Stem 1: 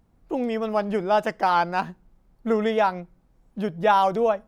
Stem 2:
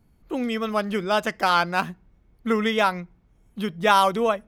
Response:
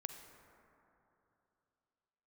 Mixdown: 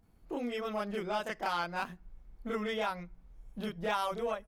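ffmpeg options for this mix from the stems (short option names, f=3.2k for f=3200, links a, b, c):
-filter_complex "[0:a]asubboost=boost=8:cutoff=85,aeval=exprs='0.355*sin(PI/2*1.58*val(0)/0.355)':c=same,volume=-14dB[a];[1:a]lowshelf=f=250:g=-6,adelay=29,volume=-4.5dB[b];[a][b]amix=inputs=2:normalize=0,acompressor=threshold=-38dB:ratio=2"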